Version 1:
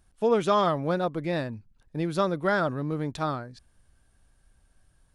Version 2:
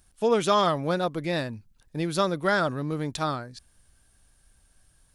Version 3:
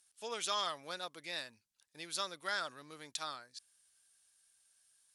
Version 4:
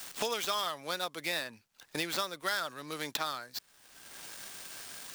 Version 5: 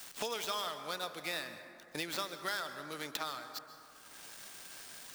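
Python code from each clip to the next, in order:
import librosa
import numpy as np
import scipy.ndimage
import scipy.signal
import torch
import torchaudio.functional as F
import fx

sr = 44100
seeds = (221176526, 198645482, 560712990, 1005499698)

y1 = fx.high_shelf(x, sr, hz=2900.0, db=10.0)
y2 = fx.bandpass_q(y1, sr, hz=7000.0, q=0.51)
y2 = y2 * librosa.db_to_amplitude(-3.0)
y3 = fx.dead_time(y2, sr, dead_ms=0.051)
y3 = fx.band_squash(y3, sr, depth_pct=100)
y3 = y3 * librosa.db_to_amplitude(6.5)
y4 = fx.rev_plate(y3, sr, seeds[0], rt60_s=2.5, hf_ratio=0.35, predelay_ms=115, drr_db=9.0)
y4 = y4 * librosa.db_to_amplitude(-4.5)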